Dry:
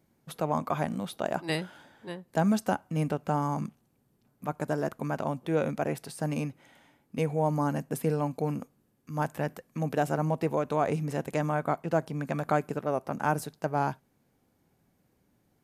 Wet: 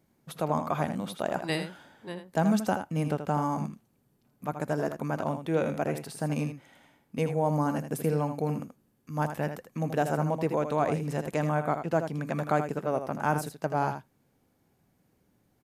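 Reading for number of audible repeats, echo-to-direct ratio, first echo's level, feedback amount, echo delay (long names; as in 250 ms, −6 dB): 1, −8.5 dB, −8.5 dB, repeats not evenly spaced, 80 ms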